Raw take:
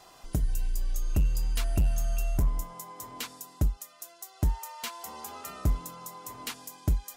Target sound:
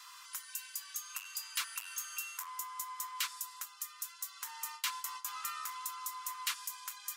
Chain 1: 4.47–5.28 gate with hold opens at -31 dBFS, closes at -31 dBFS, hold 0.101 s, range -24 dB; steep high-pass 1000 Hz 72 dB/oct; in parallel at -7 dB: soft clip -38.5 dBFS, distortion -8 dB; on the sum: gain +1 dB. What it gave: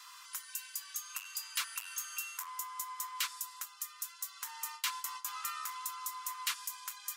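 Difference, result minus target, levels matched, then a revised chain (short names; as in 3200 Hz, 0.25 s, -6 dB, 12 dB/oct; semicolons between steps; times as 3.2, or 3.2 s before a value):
soft clip: distortion -4 dB
4.47–5.28 gate with hold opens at -31 dBFS, closes at -31 dBFS, hold 0.101 s, range -24 dB; steep high-pass 1000 Hz 72 dB/oct; in parallel at -7 dB: soft clip -45.5 dBFS, distortion -4 dB; on the sum: gain +1 dB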